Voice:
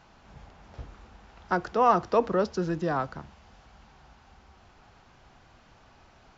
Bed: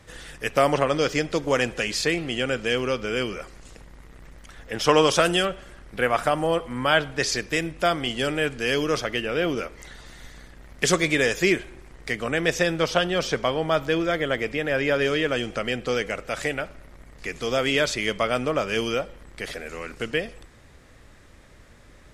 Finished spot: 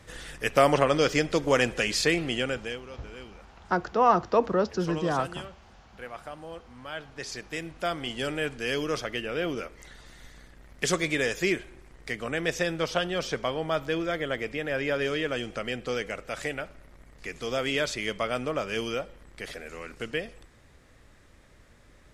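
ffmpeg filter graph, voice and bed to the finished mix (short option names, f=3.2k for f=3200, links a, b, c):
-filter_complex "[0:a]adelay=2200,volume=0.5dB[a];[1:a]volume=12.5dB,afade=t=out:st=2.27:d=0.55:silence=0.125893,afade=t=in:st=6.9:d=1.37:silence=0.223872[b];[a][b]amix=inputs=2:normalize=0"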